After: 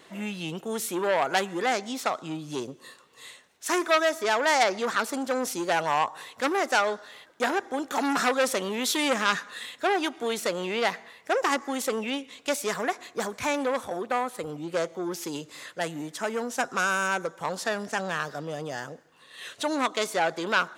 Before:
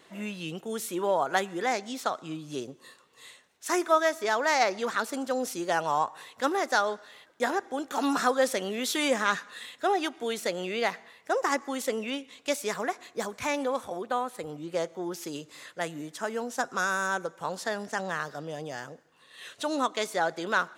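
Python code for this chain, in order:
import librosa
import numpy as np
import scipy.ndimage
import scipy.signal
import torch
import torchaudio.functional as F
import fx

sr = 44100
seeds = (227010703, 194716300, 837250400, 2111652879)

y = fx.transformer_sat(x, sr, knee_hz=2900.0)
y = F.gain(torch.from_numpy(y), 4.0).numpy()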